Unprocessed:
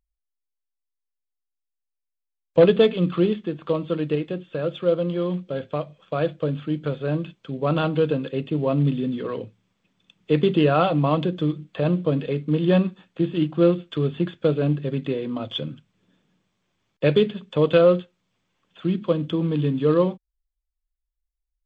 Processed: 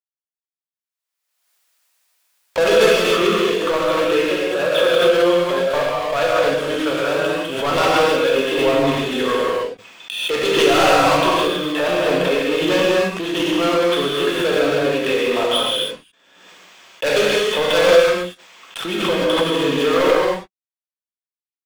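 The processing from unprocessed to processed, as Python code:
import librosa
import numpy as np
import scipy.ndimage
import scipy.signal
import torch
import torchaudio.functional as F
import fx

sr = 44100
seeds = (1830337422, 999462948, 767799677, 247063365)

y = scipy.signal.sosfilt(scipy.signal.butter(2, 690.0, 'highpass', fs=sr, output='sos'), x)
y = fx.leveller(y, sr, passes=5)
y = fx.rev_gated(y, sr, seeds[0], gate_ms=340, shape='flat', drr_db=-6.0)
y = fx.pre_swell(y, sr, db_per_s=46.0)
y = y * librosa.db_to_amplitude(-5.5)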